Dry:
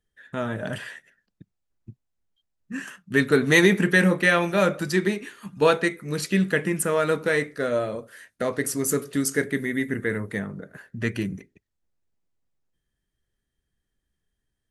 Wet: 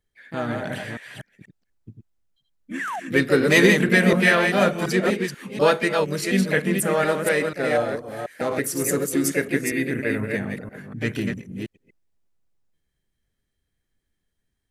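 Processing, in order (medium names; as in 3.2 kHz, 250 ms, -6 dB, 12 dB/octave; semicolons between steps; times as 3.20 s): chunks repeated in reverse 243 ms, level -4.5 dB; harmony voices +4 st -7 dB; painted sound fall, 2.79–3.00 s, 640–2100 Hz -29 dBFS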